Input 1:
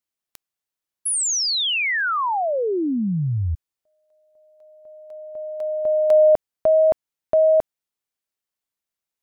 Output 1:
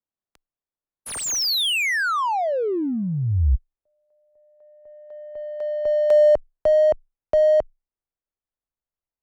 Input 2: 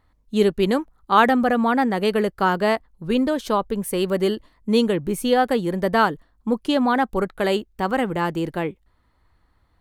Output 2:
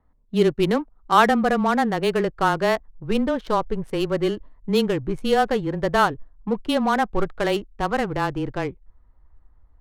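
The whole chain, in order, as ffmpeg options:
-af "asubboost=boost=5:cutoff=82,adynamicsmooth=sensitivity=4:basefreq=1300,afreqshift=-17"

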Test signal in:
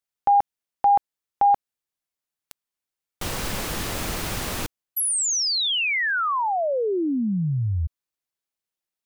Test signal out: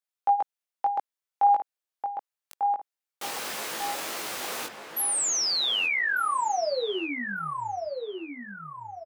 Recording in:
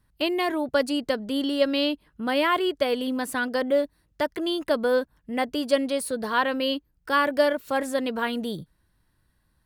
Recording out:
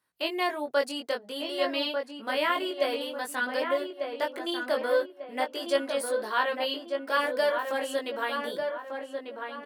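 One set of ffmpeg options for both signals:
-filter_complex "[0:a]highpass=440,flanger=delay=18:depth=3.6:speed=0.51,asplit=2[s0][s1];[s1]adelay=1195,lowpass=f=2000:p=1,volume=0.562,asplit=2[s2][s3];[s3]adelay=1195,lowpass=f=2000:p=1,volume=0.42,asplit=2[s4][s5];[s5]adelay=1195,lowpass=f=2000:p=1,volume=0.42,asplit=2[s6][s7];[s7]adelay=1195,lowpass=f=2000:p=1,volume=0.42,asplit=2[s8][s9];[s9]adelay=1195,lowpass=f=2000:p=1,volume=0.42[s10];[s0][s2][s4][s6][s8][s10]amix=inputs=6:normalize=0"

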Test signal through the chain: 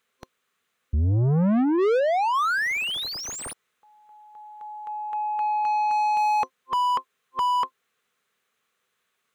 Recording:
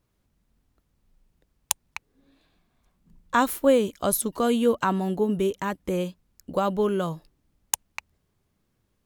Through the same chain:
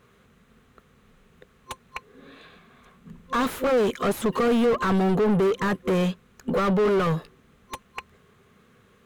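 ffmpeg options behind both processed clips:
-filter_complex "[0:a]volume=7.08,asoftclip=hard,volume=0.141,superequalizer=6b=0.355:8b=0.398:9b=0.355:14b=0.562,asplit=2[s0][s1];[s1]highpass=f=720:p=1,volume=50.1,asoftclip=type=tanh:threshold=0.2[s2];[s0][s2]amix=inputs=2:normalize=0,lowpass=f=1000:p=1,volume=0.501"

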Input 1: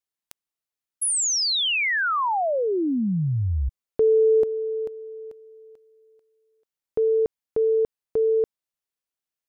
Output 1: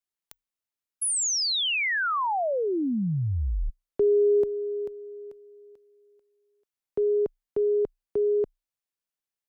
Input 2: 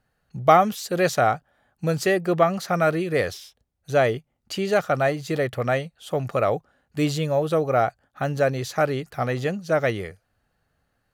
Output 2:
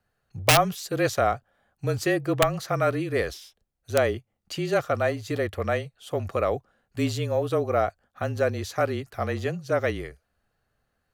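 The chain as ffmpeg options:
-af "aeval=exprs='(mod(2.24*val(0)+1,2)-1)/2.24':c=same,afreqshift=-30,volume=0.708"

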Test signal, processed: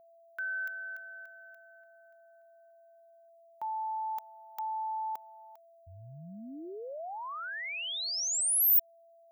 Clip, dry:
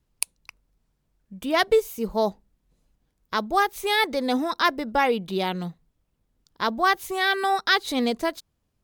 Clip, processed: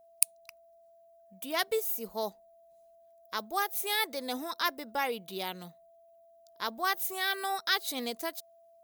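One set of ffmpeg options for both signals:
-af "aemphasis=mode=production:type=bsi,aeval=exprs='val(0)+0.00447*sin(2*PI*670*n/s)':c=same,volume=0.316"

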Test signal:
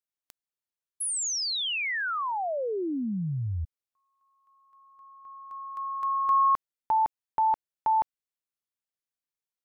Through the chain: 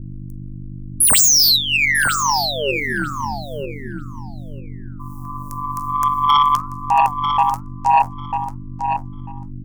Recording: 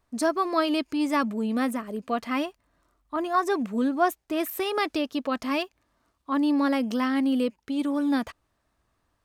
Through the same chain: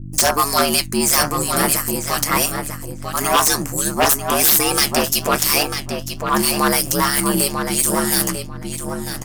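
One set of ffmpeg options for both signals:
-filter_complex "[0:a]highpass=f=1200:p=1,agate=range=0.0178:threshold=0.00126:ratio=16:release=61:detection=peak,acrossover=split=5100[s0][s1];[s1]acompressor=threshold=0.00562:ratio=4:attack=1:release=60[s2];[s0][s2]amix=inputs=2:normalize=0,flanger=delay=6.9:depth=6.1:regen=66:speed=1.3:shape=triangular,acrossover=split=2000[s3][s4];[s3]aeval=exprs='val(0)*(1-0.7/2+0.7/2*cos(2*PI*3*n/s))':c=same[s5];[s4]aeval=exprs='val(0)*(1-0.7/2-0.7/2*cos(2*PI*3*n/s))':c=same[s6];[s5][s6]amix=inputs=2:normalize=0,aexciter=amount=12.3:drive=6:freq=5400,aeval=exprs='val(0)+0.00251*(sin(2*PI*50*n/s)+sin(2*PI*2*50*n/s)/2+sin(2*PI*3*50*n/s)/3+sin(2*PI*4*50*n/s)/4+sin(2*PI*5*50*n/s)/5)':c=same,aeval=exprs='val(0)*sin(2*PI*72*n/s)':c=same,aeval=exprs='0.168*sin(PI/2*5.62*val(0)/0.168)':c=same,asplit=2[s7][s8];[s8]adelay=945,lowpass=f=4600:p=1,volume=0.501,asplit=2[s9][s10];[s10]adelay=945,lowpass=f=4600:p=1,volume=0.17,asplit=2[s11][s12];[s12]adelay=945,lowpass=f=4600:p=1,volume=0.17[s13];[s7][s9][s11][s13]amix=inputs=4:normalize=0,volume=2.11"

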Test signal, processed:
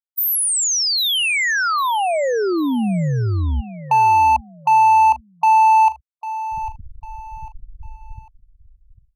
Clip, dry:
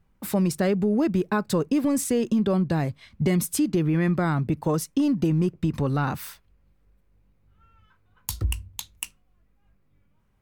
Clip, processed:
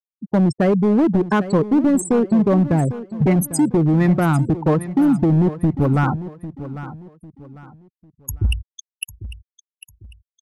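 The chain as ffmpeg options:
-af "anlmdn=25.1,acontrast=39,afftfilt=real='re*gte(hypot(re,im),0.141)':imag='im*gte(hypot(re,im),0.141)':win_size=1024:overlap=0.75,volume=5.01,asoftclip=hard,volume=0.2,aecho=1:1:799|1598|2397:0.2|0.0658|0.0217,volume=1.33"

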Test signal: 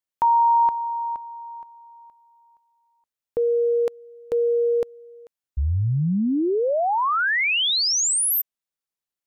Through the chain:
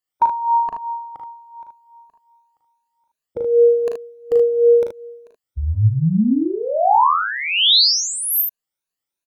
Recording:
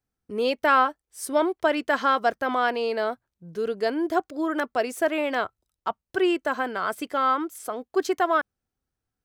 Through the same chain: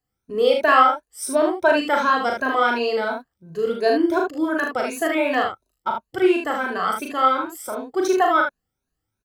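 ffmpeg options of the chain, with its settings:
-af "afftfilt=real='re*pow(10,14/40*sin(2*PI*(1.5*log(max(b,1)*sr/1024/100)/log(2)-(2.8)*(pts-256)/sr)))':imag='im*pow(10,14/40*sin(2*PI*(1.5*log(max(b,1)*sr/1024/100)/log(2)-(2.8)*(pts-256)/sr)))':win_size=1024:overlap=0.75,aecho=1:1:38|54|76:0.631|0.282|0.531"

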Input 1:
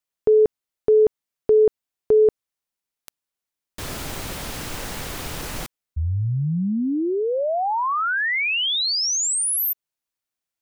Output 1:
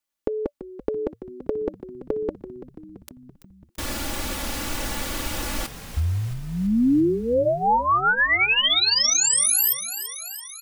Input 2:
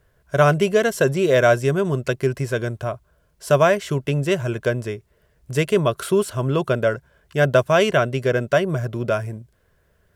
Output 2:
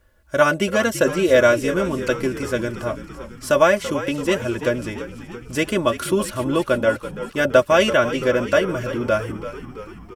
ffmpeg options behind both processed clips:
-filter_complex "[0:a]bandreject=f=580:w=19,aecho=1:1:3.5:0.79,asplit=8[s0][s1][s2][s3][s4][s5][s6][s7];[s1]adelay=335,afreqshift=-60,volume=0.237[s8];[s2]adelay=670,afreqshift=-120,volume=0.15[s9];[s3]adelay=1005,afreqshift=-180,volume=0.0944[s10];[s4]adelay=1340,afreqshift=-240,volume=0.0596[s11];[s5]adelay=1675,afreqshift=-300,volume=0.0372[s12];[s6]adelay=2010,afreqshift=-360,volume=0.0234[s13];[s7]adelay=2345,afreqshift=-420,volume=0.0148[s14];[s0][s8][s9][s10][s11][s12][s13][s14]amix=inputs=8:normalize=0"

